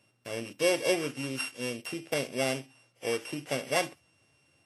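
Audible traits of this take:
a buzz of ramps at a fixed pitch in blocks of 16 samples
Ogg Vorbis

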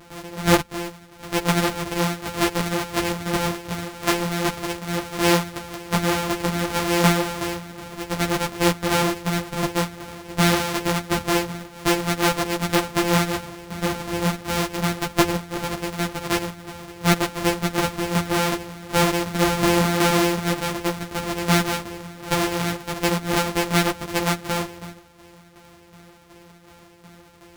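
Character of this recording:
a buzz of ramps at a fixed pitch in blocks of 256 samples
tremolo saw down 2.7 Hz, depth 60%
a shimmering, thickened sound

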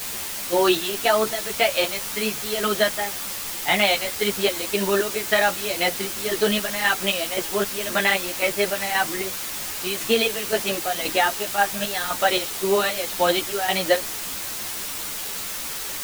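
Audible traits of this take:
chopped level 1.9 Hz, depth 65%, duty 50%
a quantiser's noise floor 6 bits, dither triangular
a shimmering, thickened sound

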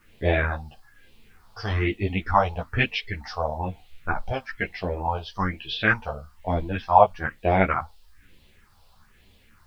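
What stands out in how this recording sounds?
phaser sweep stages 4, 1.1 Hz, lowest notch 300–1,400 Hz
a quantiser's noise floor 12 bits, dither triangular
a shimmering, thickened sound

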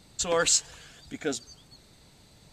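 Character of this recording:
background noise floor −57 dBFS
spectral slope −1.0 dB per octave

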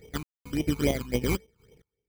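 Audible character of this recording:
a buzz of ramps at a fixed pitch in blocks of 16 samples
sample-and-hold tremolo 4.4 Hz, depth 100%
aliases and images of a low sample rate 2,700 Hz, jitter 0%
phaser sweep stages 12, 3.6 Hz, lowest notch 550–1,500 Hz

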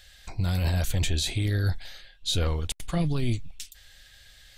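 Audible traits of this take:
background noise floor −54 dBFS
spectral slope −5.0 dB per octave

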